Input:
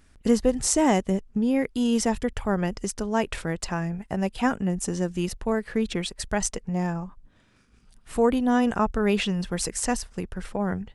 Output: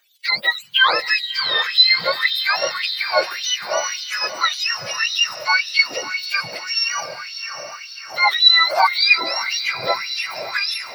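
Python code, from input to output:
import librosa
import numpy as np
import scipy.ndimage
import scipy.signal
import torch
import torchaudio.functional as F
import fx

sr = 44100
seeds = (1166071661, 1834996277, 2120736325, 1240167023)

y = fx.octave_mirror(x, sr, pivot_hz=990.0)
y = fx.echo_diffused(y, sr, ms=654, feedback_pct=58, wet_db=-9)
y = fx.filter_lfo_highpass(y, sr, shape='sine', hz=1.8, low_hz=580.0, high_hz=3700.0, q=4.8)
y = y * librosa.db_to_amplitude(5.0)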